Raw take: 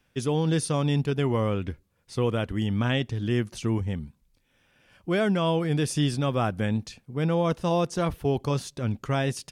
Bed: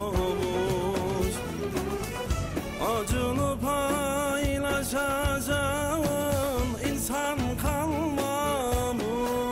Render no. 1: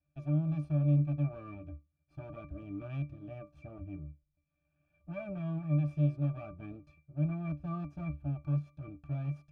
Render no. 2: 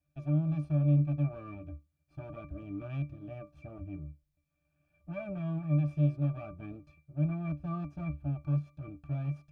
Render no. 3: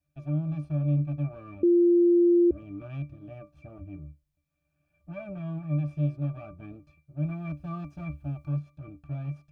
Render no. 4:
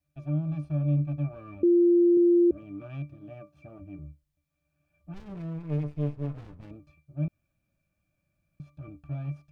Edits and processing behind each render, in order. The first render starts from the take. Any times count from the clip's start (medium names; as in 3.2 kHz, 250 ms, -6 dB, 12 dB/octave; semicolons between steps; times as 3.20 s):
comb filter that takes the minimum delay 1.2 ms; pitch-class resonator D, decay 0.19 s
trim +1.5 dB
1.63–2.51 s: bleep 347 Hz -16.5 dBFS; 7.24–8.48 s: treble shelf 2.3 kHz +7 dB
2.17–3.99 s: high-pass 110 Hz; 5.14–6.71 s: sliding maximum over 65 samples; 7.28–8.60 s: room tone